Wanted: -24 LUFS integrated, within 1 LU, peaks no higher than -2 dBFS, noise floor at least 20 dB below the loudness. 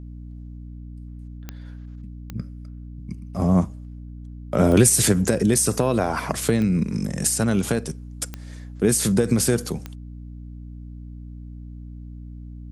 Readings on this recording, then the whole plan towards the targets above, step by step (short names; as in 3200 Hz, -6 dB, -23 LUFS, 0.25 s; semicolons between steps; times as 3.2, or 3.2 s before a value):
clicks 6; hum 60 Hz; harmonics up to 300 Hz; hum level -36 dBFS; loudness -21.0 LUFS; peak -3.5 dBFS; loudness target -24.0 LUFS
-> de-click; de-hum 60 Hz, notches 5; gain -3 dB